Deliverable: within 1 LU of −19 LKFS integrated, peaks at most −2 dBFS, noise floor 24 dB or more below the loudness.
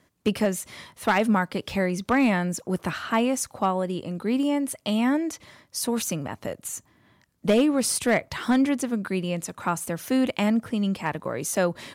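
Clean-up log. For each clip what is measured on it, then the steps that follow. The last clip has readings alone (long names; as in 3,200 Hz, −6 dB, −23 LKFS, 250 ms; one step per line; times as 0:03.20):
share of clipped samples 0.2%; peaks flattened at −13.5 dBFS; integrated loudness −25.5 LKFS; sample peak −13.5 dBFS; target loudness −19.0 LKFS
→ clipped peaks rebuilt −13.5 dBFS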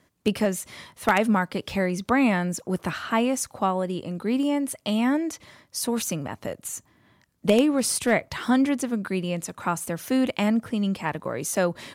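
share of clipped samples 0.0%; integrated loudness −25.5 LKFS; sample peak −4.5 dBFS; target loudness −19.0 LKFS
→ level +6.5 dB
brickwall limiter −2 dBFS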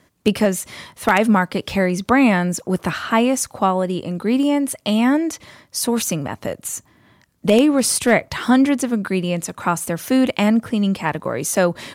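integrated loudness −19.0 LKFS; sample peak −2.0 dBFS; background noise floor −57 dBFS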